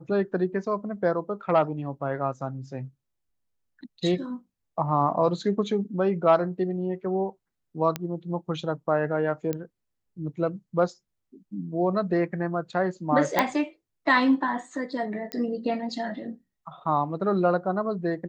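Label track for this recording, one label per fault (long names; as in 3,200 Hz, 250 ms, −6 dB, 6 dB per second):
7.960000	7.960000	click −13 dBFS
9.530000	9.530000	click −16 dBFS
13.390000	13.390000	click −6 dBFS
15.320000	15.320000	click −17 dBFS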